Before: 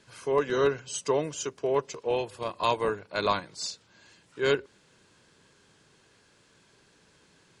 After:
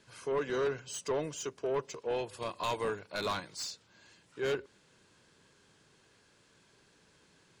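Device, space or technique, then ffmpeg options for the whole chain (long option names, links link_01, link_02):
saturation between pre-emphasis and de-emphasis: -filter_complex "[0:a]asettb=1/sr,asplit=3[link_01][link_02][link_03];[link_01]atrim=end=2.334[link_04];[link_02]atrim=start=2.33:end=3.64,asetpts=PTS-STARTPTS,afade=type=in:duration=0.004:curve=qsin,afade=type=out:start_time=1.306:duration=0.004:curve=qsin,highshelf=frequency=2400:gain=6[link_05];[link_03]atrim=start=3.636[link_06];[link_04][link_05]acrossfade=duration=0.004:curve1=hsin:curve2=qsin[link_07];[link_07][link_06]acrossfade=duration=0.004:curve1=qsin:curve2=hsin,highshelf=frequency=2500:gain=10.5,asoftclip=type=tanh:threshold=-22dB,highshelf=frequency=2500:gain=-10.5,volume=-3.5dB"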